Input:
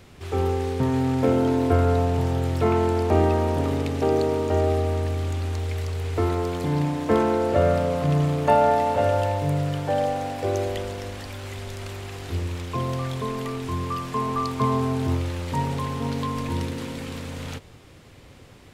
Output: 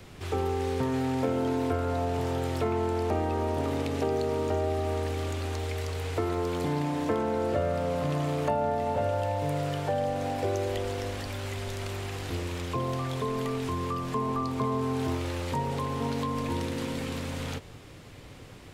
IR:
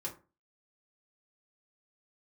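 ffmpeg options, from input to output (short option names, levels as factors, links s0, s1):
-filter_complex "[0:a]flanger=delay=6.2:depth=2.8:regen=-77:speed=0.16:shape=triangular,acrossover=split=290|800[s0][s1][s2];[s0]acompressor=threshold=0.0112:ratio=4[s3];[s1]acompressor=threshold=0.0158:ratio=4[s4];[s2]acompressor=threshold=0.00708:ratio=4[s5];[s3][s4][s5]amix=inputs=3:normalize=0,volume=1.88"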